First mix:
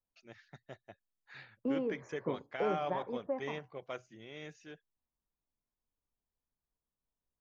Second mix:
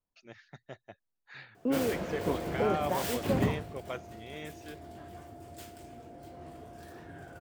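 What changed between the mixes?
first voice +3.5 dB
second voice +4.0 dB
background: unmuted

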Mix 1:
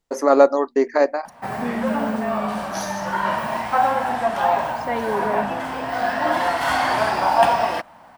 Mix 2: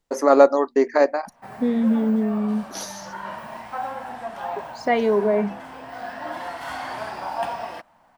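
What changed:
second voice +6.0 dB
background −11.5 dB

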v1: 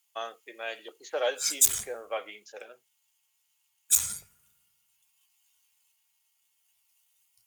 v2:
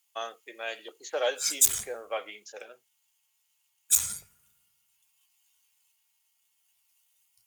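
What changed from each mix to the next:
speech: remove high-frequency loss of the air 74 metres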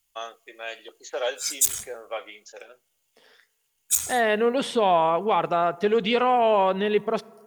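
first voice: send on
second voice: unmuted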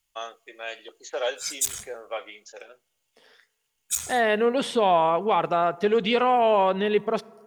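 background: add high-shelf EQ 8,400 Hz −9.5 dB

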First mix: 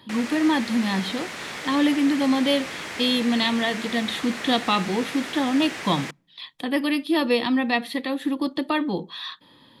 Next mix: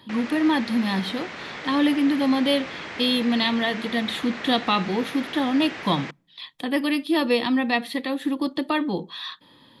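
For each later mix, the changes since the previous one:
background: add high-frequency loss of the air 150 metres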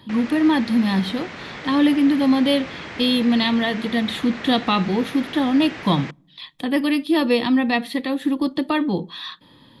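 speech: send +10.5 dB
master: add low-shelf EQ 190 Hz +9.5 dB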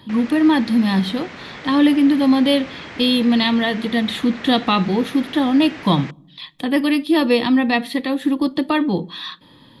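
speech: send +9.5 dB
background: send off

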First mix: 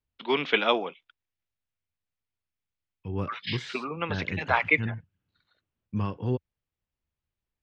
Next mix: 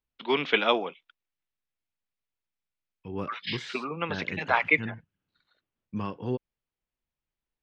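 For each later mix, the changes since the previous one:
second voice: add parametric band 87 Hz −10.5 dB 1.2 octaves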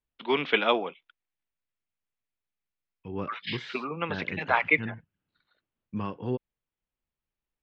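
master: add low-pass filter 4,000 Hz 12 dB per octave

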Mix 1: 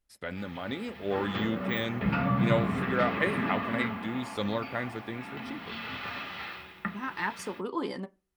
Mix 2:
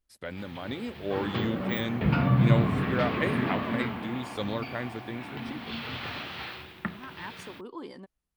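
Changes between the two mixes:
second voice −7.5 dB
background +5.5 dB
reverb: off

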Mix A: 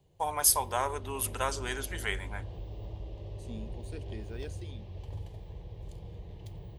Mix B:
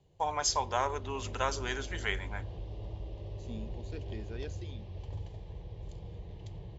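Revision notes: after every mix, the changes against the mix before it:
master: add linear-phase brick-wall low-pass 7,600 Hz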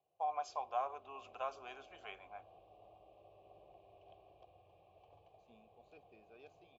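second voice: entry +2.00 s
master: add formant filter a

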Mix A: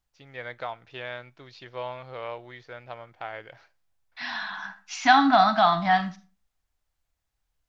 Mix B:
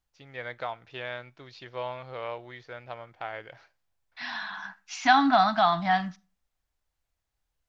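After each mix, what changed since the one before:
second voice: send −11.5 dB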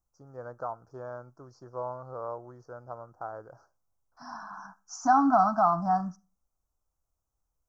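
master: add elliptic band-stop filter 1,300–5,700 Hz, stop band 40 dB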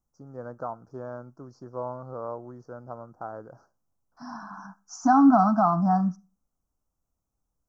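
master: add parametric band 220 Hz +11 dB 1.3 octaves

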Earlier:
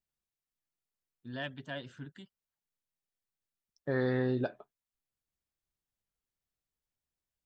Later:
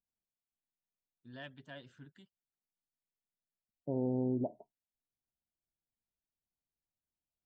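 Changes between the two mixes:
first voice −9.0 dB
second voice: add Chebyshev low-pass with heavy ripple 960 Hz, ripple 6 dB

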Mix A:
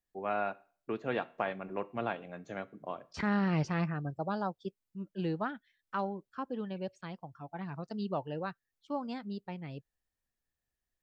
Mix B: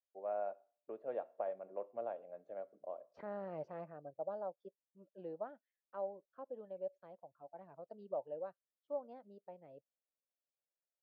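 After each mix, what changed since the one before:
master: add resonant band-pass 580 Hz, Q 5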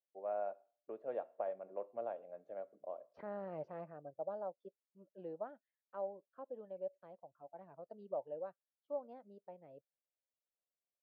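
second voice: add high-frequency loss of the air 88 metres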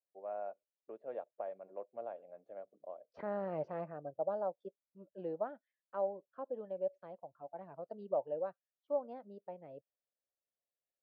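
second voice +6.0 dB
reverb: off

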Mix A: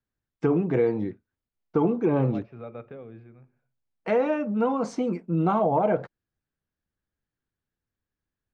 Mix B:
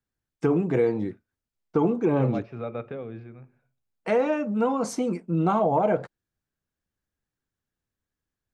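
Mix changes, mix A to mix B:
second voice +6.0 dB
master: remove high-frequency loss of the air 120 metres

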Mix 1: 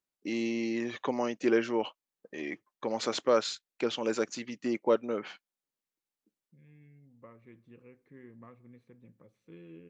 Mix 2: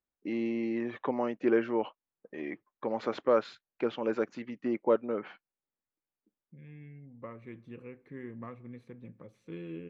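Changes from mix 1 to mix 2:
first voice: add low-pass filter 1,900 Hz 12 dB per octave
second voice +8.5 dB

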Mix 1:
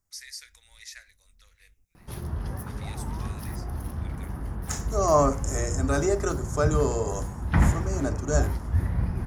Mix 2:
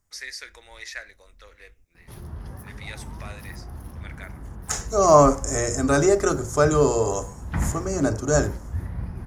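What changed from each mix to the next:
first voice: remove first difference
second voice +6.5 dB
background −5.0 dB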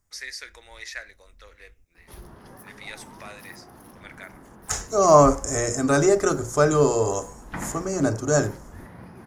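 background: add high-pass filter 240 Hz 12 dB per octave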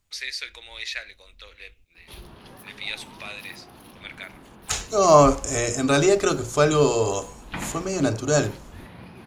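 master: add flat-topped bell 3,200 Hz +11.5 dB 1.1 octaves

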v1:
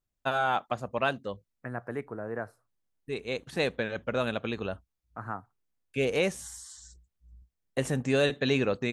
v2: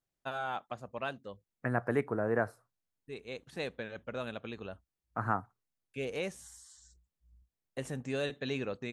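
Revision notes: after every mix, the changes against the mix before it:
first voice −9.5 dB
second voice +5.0 dB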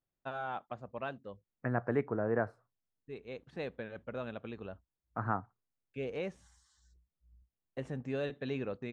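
master: add head-to-tape spacing loss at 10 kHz 23 dB

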